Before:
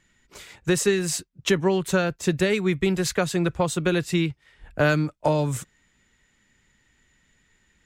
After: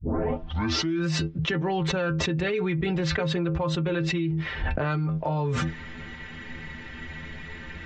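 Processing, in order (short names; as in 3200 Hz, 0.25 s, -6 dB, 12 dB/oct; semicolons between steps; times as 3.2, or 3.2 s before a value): tape start at the beginning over 1.07 s; Gaussian blur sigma 2.3 samples; metallic resonator 78 Hz, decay 0.22 s, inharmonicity 0.008; fast leveller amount 100%; gain -6 dB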